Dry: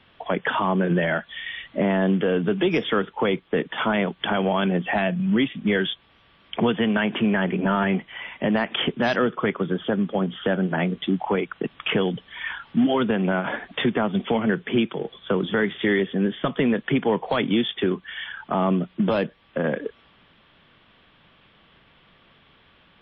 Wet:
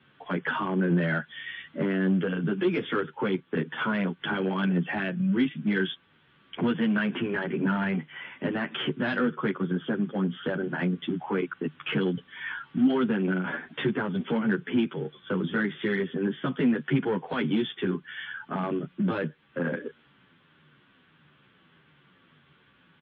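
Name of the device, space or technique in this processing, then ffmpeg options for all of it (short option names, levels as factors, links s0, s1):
barber-pole flanger into a guitar amplifier: -filter_complex "[0:a]asplit=2[s0][s1];[s1]adelay=10.4,afreqshift=-1.6[s2];[s0][s2]amix=inputs=2:normalize=1,asoftclip=type=tanh:threshold=0.141,highpass=83,equalizer=f=150:t=q:w=4:g=10,equalizer=f=260:t=q:w=4:g=6,equalizer=f=370:t=q:w=4:g=4,equalizer=f=670:t=q:w=4:g=-6,equalizer=f=1500:t=q:w=4:g=7,lowpass=f=3900:w=0.5412,lowpass=f=3900:w=1.3066,volume=0.668"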